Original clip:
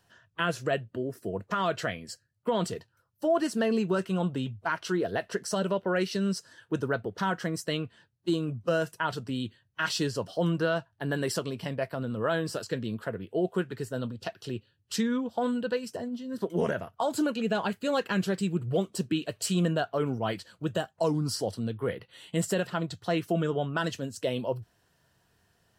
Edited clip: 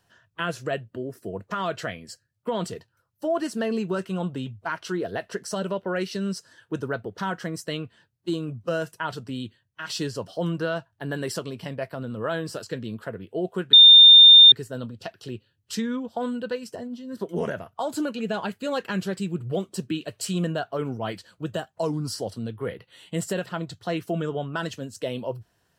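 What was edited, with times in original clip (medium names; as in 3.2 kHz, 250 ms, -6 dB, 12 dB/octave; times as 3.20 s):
9.40–9.89 s: fade out, to -7.5 dB
13.73 s: add tone 3.62 kHz -6.5 dBFS 0.79 s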